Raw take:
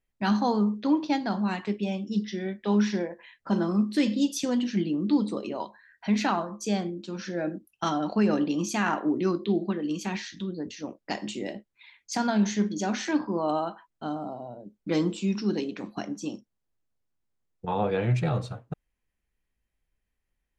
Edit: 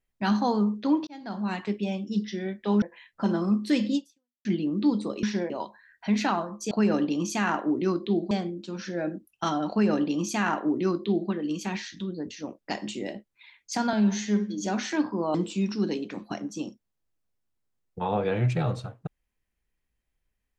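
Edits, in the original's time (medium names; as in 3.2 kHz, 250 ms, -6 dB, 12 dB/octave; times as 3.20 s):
1.07–1.57 s: fade in
2.82–3.09 s: move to 5.50 s
4.22–4.72 s: fade out exponential
8.10–9.70 s: copy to 6.71 s
12.33–12.82 s: stretch 1.5×
13.50–15.01 s: delete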